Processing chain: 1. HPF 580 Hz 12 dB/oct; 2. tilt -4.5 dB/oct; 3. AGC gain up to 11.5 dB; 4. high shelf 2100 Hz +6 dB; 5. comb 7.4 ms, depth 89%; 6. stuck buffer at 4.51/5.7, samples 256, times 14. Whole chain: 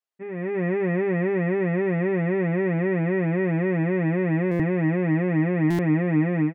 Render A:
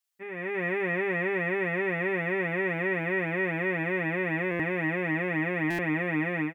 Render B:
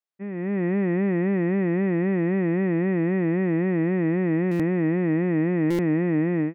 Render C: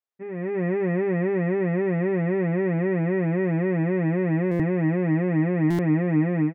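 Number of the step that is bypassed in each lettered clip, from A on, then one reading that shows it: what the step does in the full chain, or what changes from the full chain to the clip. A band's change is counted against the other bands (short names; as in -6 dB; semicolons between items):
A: 2, 2 kHz band +11.5 dB; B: 5, 250 Hz band +3.5 dB; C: 4, 2 kHz band -2.5 dB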